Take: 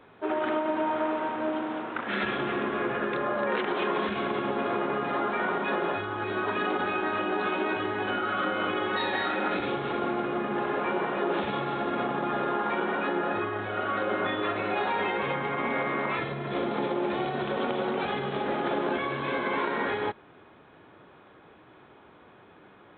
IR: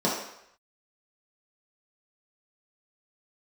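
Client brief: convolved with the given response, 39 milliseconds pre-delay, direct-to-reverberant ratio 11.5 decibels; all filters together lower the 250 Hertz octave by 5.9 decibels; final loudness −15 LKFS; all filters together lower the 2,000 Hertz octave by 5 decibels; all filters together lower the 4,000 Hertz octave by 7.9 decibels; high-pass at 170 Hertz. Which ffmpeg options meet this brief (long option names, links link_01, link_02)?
-filter_complex "[0:a]highpass=170,equalizer=frequency=250:width_type=o:gain=-8,equalizer=frequency=2000:width_type=o:gain=-5,equalizer=frequency=4000:width_type=o:gain=-8.5,asplit=2[link_01][link_02];[1:a]atrim=start_sample=2205,adelay=39[link_03];[link_02][link_03]afir=irnorm=-1:irlink=0,volume=-25dB[link_04];[link_01][link_04]amix=inputs=2:normalize=0,volume=16.5dB"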